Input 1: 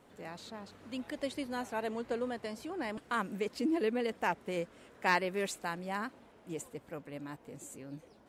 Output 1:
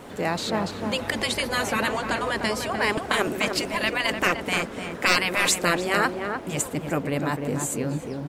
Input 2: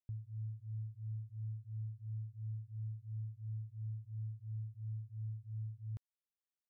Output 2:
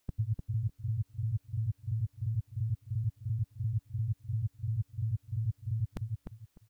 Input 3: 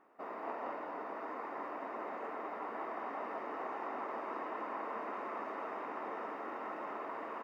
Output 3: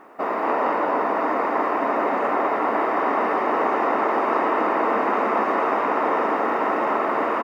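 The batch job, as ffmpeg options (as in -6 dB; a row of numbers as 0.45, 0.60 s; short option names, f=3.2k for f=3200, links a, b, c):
-filter_complex "[0:a]apsyclip=25dB,afftfilt=real='re*lt(hypot(re,im),1.12)':imag='im*lt(hypot(re,im),1.12)':win_size=1024:overlap=0.75,asplit=2[a][b];[b]adelay=301,lowpass=f=1.1k:p=1,volume=-4dB,asplit=2[c][d];[d]adelay=301,lowpass=f=1.1k:p=1,volume=0.22,asplit=2[e][f];[f]adelay=301,lowpass=f=1.1k:p=1,volume=0.22[g];[a][c][e][g]amix=inputs=4:normalize=0,volume=-5.5dB"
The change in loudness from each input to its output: +12.0, +9.0, +20.0 LU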